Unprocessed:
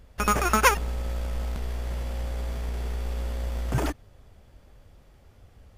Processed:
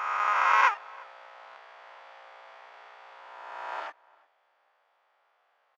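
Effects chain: spectral swells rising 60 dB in 2.08 s; HPF 830 Hz 24 dB/oct; tape spacing loss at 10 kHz 40 dB; outdoor echo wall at 60 m, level -25 dB

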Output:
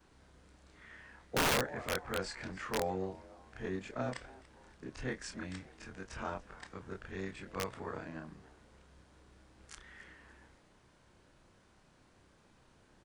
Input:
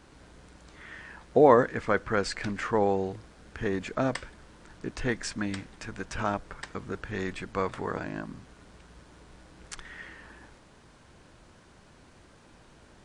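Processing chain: short-time reversal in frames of 63 ms; frequency-shifting echo 0.287 s, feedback 42%, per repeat +140 Hz, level -20 dB; wrapped overs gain 17.5 dB; gain -6.5 dB

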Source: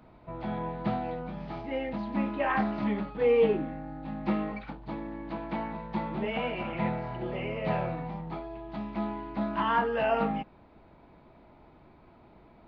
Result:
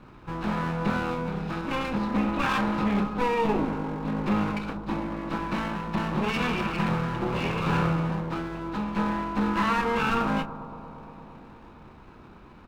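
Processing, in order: minimum comb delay 0.78 ms; notches 60/120 Hz; limiter -24.5 dBFS, peak gain reduction 9.5 dB; doubler 30 ms -11 dB; on a send: analogue delay 0.115 s, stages 1024, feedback 85%, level -14.5 dB; on the sum: gain +7.5 dB

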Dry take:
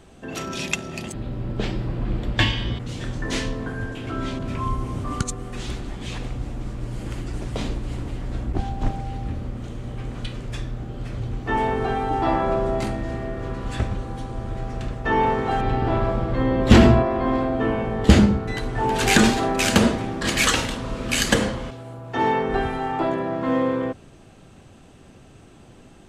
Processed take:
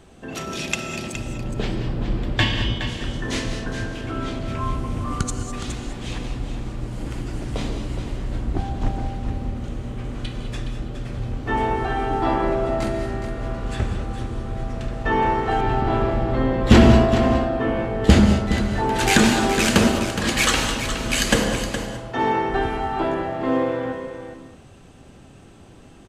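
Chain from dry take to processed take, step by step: on a send: echo 0.417 s -9.5 dB; on the sum: non-linear reverb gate 0.23 s rising, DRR 6.5 dB

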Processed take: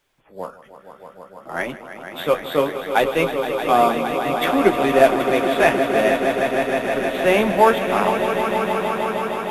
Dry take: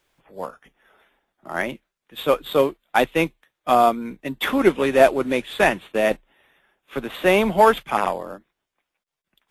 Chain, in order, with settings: swelling echo 0.156 s, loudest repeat 5, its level -10 dB; flange 0.6 Hz, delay 6.8 ms, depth 8 ms, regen -36%; gain +3.5 dB

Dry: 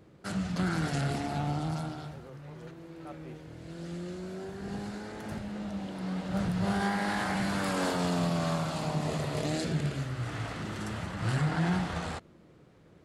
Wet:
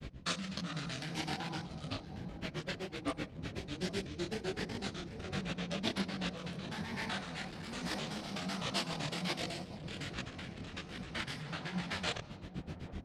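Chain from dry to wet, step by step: wind noise 83 Hz -29 dBFS; grains 84 ms, grains 7.9/s, spray 15 ms, pitch spread up and down by 3 st; hard clip -26 dBFS, distortion -6 dB; on a send at -21.5 dB: reverb RT60 1.0 s, pre-delay 47 ms; on the sum: negative-ratio compressor -41 dBFS, ratio -1; weighting filter D; dark delay 0.811 s, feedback 62%, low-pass 640 Hz, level -10.5 dB; detuned doubles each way 44 cents; gain +8 dB

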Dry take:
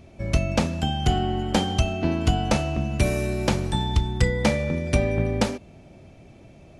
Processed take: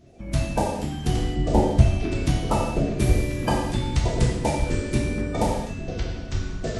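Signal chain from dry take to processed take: bin magnitudes rounded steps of 30 dB; 1.36–1.81 tilt -2.5 dB/oct; harmonic-percussive split harmonic -13 dB; non-linear reverb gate 0.29 s falling, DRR -3.5 dB; echoes that change speed 0.703 s, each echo -5 st, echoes 3, each echo -6 dB; gain -2 dB

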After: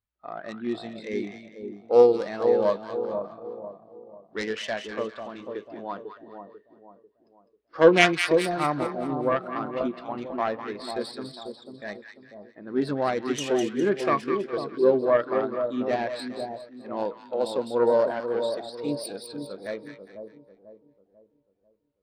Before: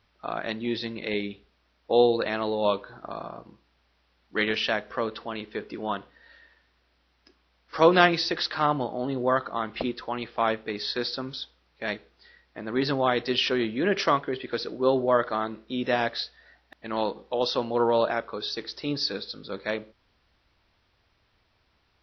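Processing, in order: self-modulated delay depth 0.33 ms; split-band echo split 1000 Hz, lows 0.493 s, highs 0.204 s, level -4.5 dB; spectral expander 1.5:1

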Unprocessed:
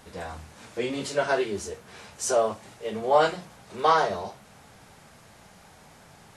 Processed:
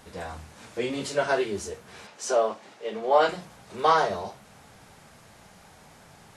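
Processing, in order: 2.07–3.29 three-band isolator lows -23 dB, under 200 Hz, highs -12 dB, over 6300 Hz

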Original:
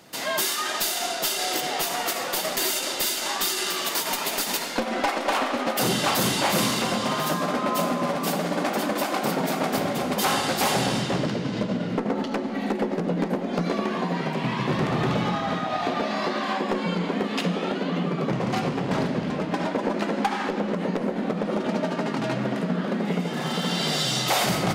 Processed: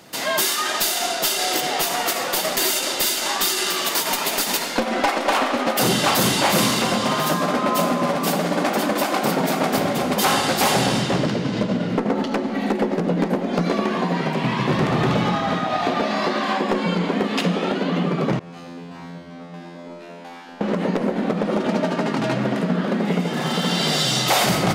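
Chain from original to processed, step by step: 18.39–20.61 resonator 86 Hz, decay 1.3 s, harmonics all, mix 100%; gain +4.5 dB

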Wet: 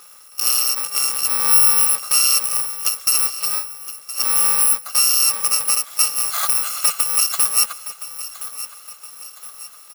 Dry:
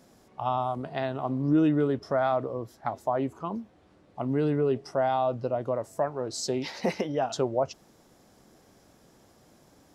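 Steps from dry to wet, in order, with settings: FFT order left unsorted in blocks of 128 samples; bell 1200 Hz +11 dB 0.26 oct; in parallel at +2 dB: compressor, threshold -34 dBFS, peak gain reduction 14.5 dB; on the sum: HPF 690 Hz 12 dB/oct; feedback echo 1.017 s, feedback 46%, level -14 dB; gain +7 dB

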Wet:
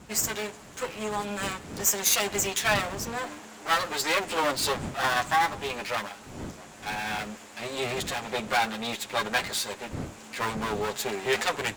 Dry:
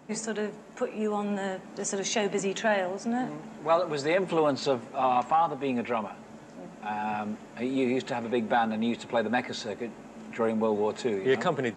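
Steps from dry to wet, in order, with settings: minimum comb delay 9.8 ms; wind noise 170 Hz -35 dBFS; tilt +3.5 dB/oct; gain +2 dB

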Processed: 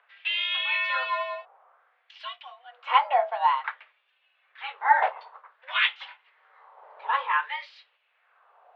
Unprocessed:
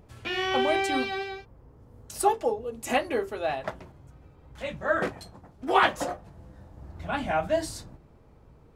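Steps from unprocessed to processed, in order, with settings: mistuned SSB +260 Hz 200–3400 Hz; LFO high-pass sine 0.54 Hz 770–2900 Hz

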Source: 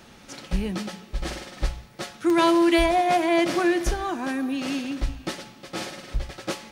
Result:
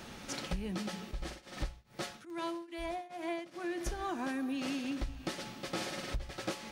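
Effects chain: compressor 6:1, threshold -35 dBFS, peak gain reduction 19 dB; 1.11–3.78 tremolo triangle 2.4 Hz, depth 95%; gain +1 dB

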